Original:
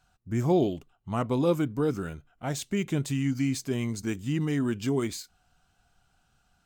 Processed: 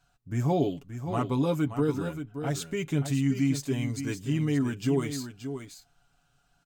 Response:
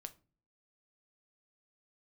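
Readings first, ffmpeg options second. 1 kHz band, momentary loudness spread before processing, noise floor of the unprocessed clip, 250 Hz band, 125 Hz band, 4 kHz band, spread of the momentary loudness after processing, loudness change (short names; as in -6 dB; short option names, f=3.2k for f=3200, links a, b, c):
0.0 dB, 9 LU, -70 dBFS, 0.0 dB, +1.5 dB, -0.5 dB, 10 LU, -0.5 dB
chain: -filter_complex "[0:a]aecho=1:1:7.1:0.65,asplit=2[a][b];[b]aecho=0:1:576:0.335[c];[a][c]amix=inputs=2:normalize=0,volume=-2.5dB"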